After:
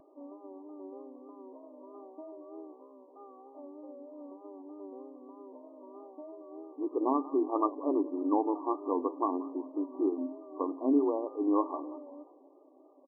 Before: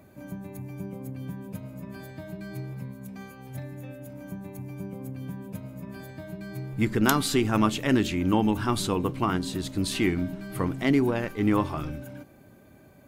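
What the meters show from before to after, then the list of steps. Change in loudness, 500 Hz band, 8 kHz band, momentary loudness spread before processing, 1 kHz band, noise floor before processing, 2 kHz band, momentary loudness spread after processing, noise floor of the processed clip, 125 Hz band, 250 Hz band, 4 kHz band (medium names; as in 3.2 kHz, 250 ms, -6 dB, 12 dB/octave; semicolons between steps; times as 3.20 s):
-4.0 dB, -2.5 dB, under -40 dB, 17 LU, -3.0 dB, -54 dBFS, under -40 dB, 21 LU, -59 dBFS, under -40 dB, -5.5 dB, under -40 dB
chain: frequency-shifting echo 177 ms, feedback 54%, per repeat -81 Hz, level -18.5 dB; FFT band-pass 260–1200 Hz; vibrato 3.2 Hz 56 cents; trim -2.5 dB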